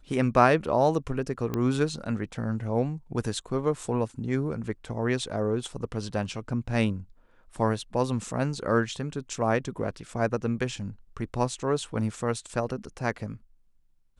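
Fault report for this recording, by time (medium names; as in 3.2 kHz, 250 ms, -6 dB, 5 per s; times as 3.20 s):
1.54 s: pop -16 dBFS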